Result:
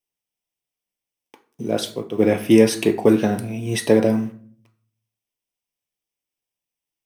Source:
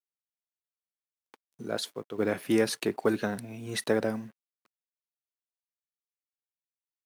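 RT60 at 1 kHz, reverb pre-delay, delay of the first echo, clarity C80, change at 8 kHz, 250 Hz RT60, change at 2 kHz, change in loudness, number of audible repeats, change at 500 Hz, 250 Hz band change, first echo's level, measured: 0.45 s, 4 ms, none, 17.5 dB, +8.5 dB, 0.80 s, +5.5 dB, +11.5 dB, none, +11.0 dB, +13.0 dB, none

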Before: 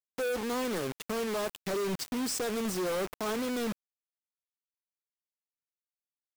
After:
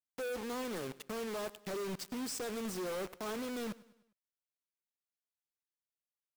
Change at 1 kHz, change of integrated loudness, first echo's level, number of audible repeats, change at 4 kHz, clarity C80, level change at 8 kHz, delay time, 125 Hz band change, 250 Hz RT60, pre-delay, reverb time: -7.0 dB, -7.0 dB, -20.0 dB, 3, -7.0 dB, none, -7.0 dB, 0.101 s, -7.0 dB, none, none, none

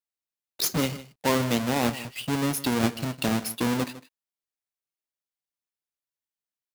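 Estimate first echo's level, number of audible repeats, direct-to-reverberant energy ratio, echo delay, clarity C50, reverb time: -16.5 dB, 1, none, 0.155 s, none, none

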